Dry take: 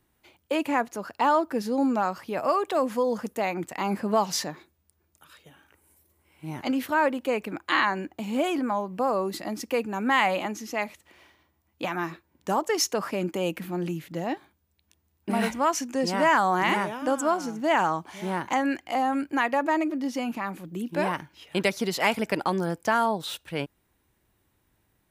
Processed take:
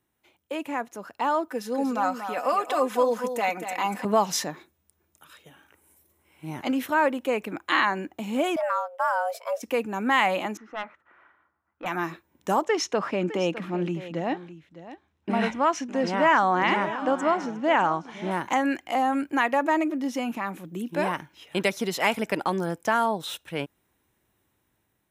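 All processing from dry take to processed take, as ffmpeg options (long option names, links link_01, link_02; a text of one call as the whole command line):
ffmpeg -i in.wav -filter_complex "[0:a]asettb=1/sr,asplit=3[link_01][link_02][link_03];[link_01]atrim=end=1.484[link_04];[link_02]atrim=start=1.48:end=4.05,asetpts=PTS-STARTPTS,afade=type=in:duration=0.004:curve=qsin,afade=type=out:start_time=2.566:duration=0.004:curve=qsin,highpass=frequency=540:poles=1,aecho=1:1:4:0.68,atrim=end_sample=113337,aecho=1:1:237:0.355,atrim=end_sample=113337[link_05];[link_03]atrim=start=4.046[link_06];[link_04][link_05]acrossfade=duration=0.004:curve1=hsin:curve2=qsin[link_07];[link_07][link_06]acrossfade=duration=0.004:curve1=qsin:curve2=hsin,asettb=1/sr,asplit=3[link_08][link_09][link_10];[link_08]atrim=end=8.564[link_11];[link_09]atrim=start=8.56:end=9.63,asetpts=PTS-STARTPTS,afade=type=in:duration=0.004:curve=qsin,afade=type=out:start_time=1.066:duration=0.004:curve=qsin,agate=range=-33dB:threshold=-31dB:ratio=3:release=100:detection=peak,asubboost=boost=7.5:cutoff=250,afreqshift=350[link_12];[link_10]atrim=start=9.626[link_13];[link_11][link_12]acrossfade=duration=0.004:curve1=hsin:curve2=qsin[link_14];[link_14][link_13]acrossfade=duration=0.004:curve1=qsin:curve2=hsin,asettb=1/sr,asplit=3[link_15][link_16][link_17];[link_15]atrim=end=10.574[link_18];[link_16]atrim=start=10.57:end=11.86,asetpts=PTS-STARTPTS,afade=type=in:duration=0.004:curve=qsin,afade=type=out:start_time=1.286:duration=0.004:curve=qsin,lowpass=frequency=1400:width_type=q:width=5.2,lowshelf=frequency=440:gain=-6.5,aeval=exprs='(tanh(8.91*val(0)+0.75)-tanh(0.75))/8.91':channel_layout=same[link_19];[link_17]atrim=start=11.856[link_20];[link_18][link_19]acrossfade=duration=0.004:curve1=hsin:curve2=qsin[link_21];[link_21][link_20]acrossfade=duration=0.004:curve1=qsin:curve2=hsin,asettb=1/sr,asplit=3[link_22][link_23][link_24];[link_22]atrim=end=12.644[link_25];[link_23]atrim=start=12.64:end=18.31,asetpts=PTS-STARTPTS,afade=type=in:duration=0.004:curve=qsin,afade=type=out:start_time=5.666:duration=0.004:curve=qsin,lowpass=4300,aecho=1:1:608:0.188,atrim=end_sample=250047[link_26];[link_24]atrim=start=18.306[link_27];[link_25][link_26]acrossfade=duration=0.004:curve1=hsin:curve2=qsin[link_28];[link_28][link_27]acrossfade=duration=0.004:curve1=qsin:curve2=hsin,lowshelf=frequency=66:gain=-11.5,bandreject=frequency=4600:width=8.1,dynaudnorm=framelen=660:gausssize=5:maxgain=8.5dB,volume=-5.5dB" out.wav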